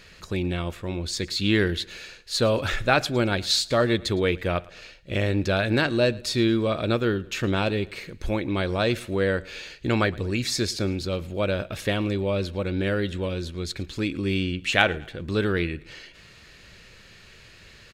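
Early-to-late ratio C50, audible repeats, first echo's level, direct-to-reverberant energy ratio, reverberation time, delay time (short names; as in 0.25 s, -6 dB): none, 2, -22.5 dB, none, none, 0.111 s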